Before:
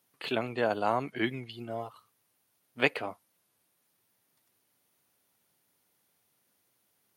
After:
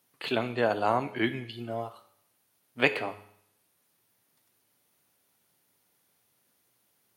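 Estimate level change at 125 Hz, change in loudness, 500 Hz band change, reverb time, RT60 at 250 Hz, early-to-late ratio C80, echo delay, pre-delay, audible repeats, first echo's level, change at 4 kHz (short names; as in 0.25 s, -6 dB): +3.0 dB, +2.5 dB, +2.5 dB, 0.70 s, 0.70 s, 17.0 dB, none, 9 ms, none, none, +2.5 dB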